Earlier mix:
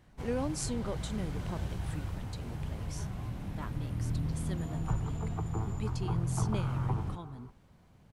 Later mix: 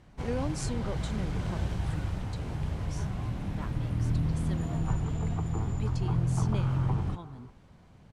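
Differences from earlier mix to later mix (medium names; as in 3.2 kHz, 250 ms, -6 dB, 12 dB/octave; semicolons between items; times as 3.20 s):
first sound +5.0 dB; master: add Bessel low-pass 8.1 kHz, order 2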